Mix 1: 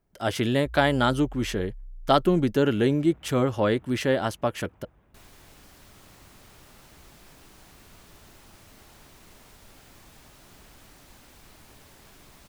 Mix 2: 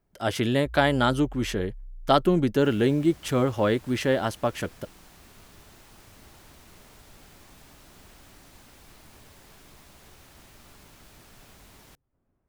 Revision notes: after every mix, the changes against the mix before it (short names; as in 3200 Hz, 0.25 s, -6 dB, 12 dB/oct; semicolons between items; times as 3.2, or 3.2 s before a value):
second sound: entry -2.55 s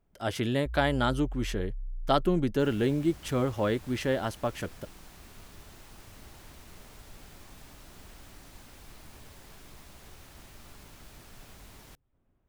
speech -5.0 dB; first sound: remove LPF 2100 Hz; master: add low shelf 69 Hz +6 dB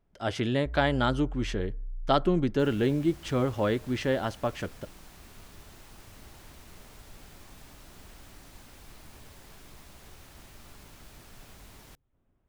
speech: add LPF 6500 Hz 12 dB/oct; reverb: on, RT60 0.55 s